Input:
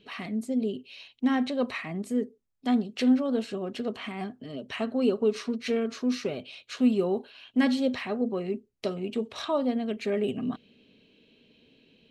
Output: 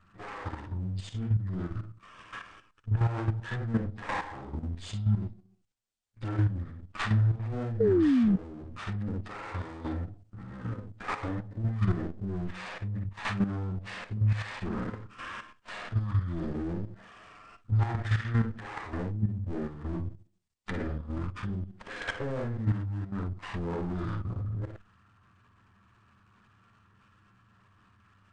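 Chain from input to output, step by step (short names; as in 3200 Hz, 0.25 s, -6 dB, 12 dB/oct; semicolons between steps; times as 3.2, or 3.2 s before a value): minimum comb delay 4.1 ms; chorus 1.2 Hz, delay 18.5 ms, depth 7.2 ms; painted sound fall, 3.33–3.58, 420–1100 Hz -24 dBFS; compressor 1.5:1, threshold -35 dBFS, peak gain reduction 6 dB; speed mistake 78 rpm record played at 33 rpm; high shelf 5100 Hz +7 dB; level quantiser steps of 10 dB; dynamic EQ 1700 Hz, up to +4 dB, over -56 dBFS, Q 1.1; gain +7.5 dB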